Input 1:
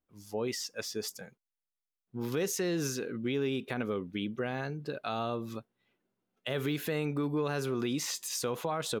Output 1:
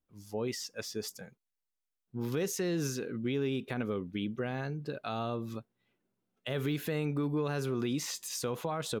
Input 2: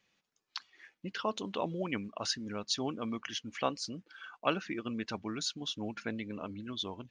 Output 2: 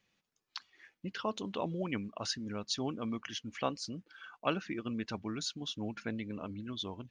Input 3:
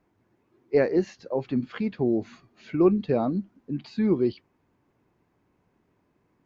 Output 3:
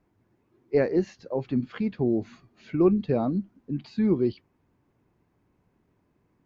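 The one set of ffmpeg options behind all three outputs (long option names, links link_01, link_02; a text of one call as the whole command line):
ffmpeg -i in.wav -af "lowshelf=frequency=200:gain=6.5,volume=-2.5dB" out.wav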